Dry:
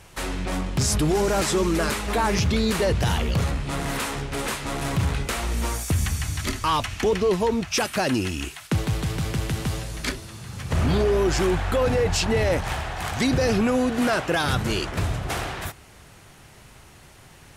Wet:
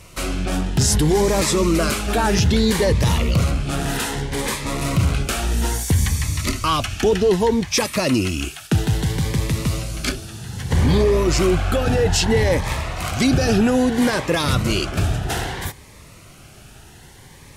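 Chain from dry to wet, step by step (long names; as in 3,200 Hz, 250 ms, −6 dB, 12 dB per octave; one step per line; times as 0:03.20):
phaser whose notches keep moving one way rising 0.62 Hz
level +5.5 dB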